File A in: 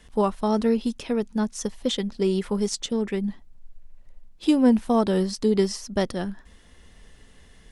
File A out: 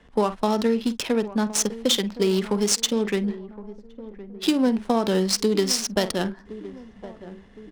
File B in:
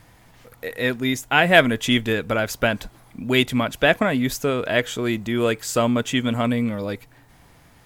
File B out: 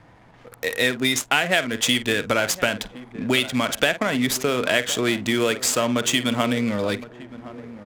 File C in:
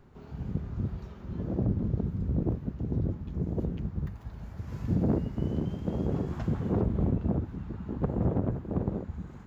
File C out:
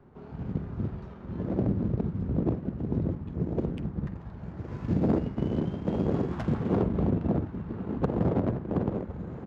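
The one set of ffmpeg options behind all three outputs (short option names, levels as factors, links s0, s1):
-filter_complex "[0:a]asplit=2[s0][s1];[s1]adelay=48,volume=0.211[s2];[s0][s2]amix=inputs=2:normalize=0,acrossover=split=220[s3][s4];[s4]crystalizer=i=3.5:c=0[s5];[s3][s5]amix=inputs=2:normalize=0,acompressor=threshold=0.1:ratio=12,asplit=2[s6][s7];[s7]adelay=1065,lowpass=f=1600:p=1,volume=0.168,asplit=2[s8][s9];[s9]adelay=1065,lowpass=f=1600:p=1,volume=0.49,asplit=2[s10][s11];[s11]adelay=1065,lowpass=f=1600:p=1,volume=0.49,asplit=2[s12][s13];[s13]adelay=1065,lowpass=f=1600:p=1,volume=0.49[s14];[s6][s8][s10][s12][s14]amix=inputs=5:normalize=0,adynamicsmooth=sensitivity=7:basefreq=1200,lowshelf=f=93:g=-11.5,volume=1.68"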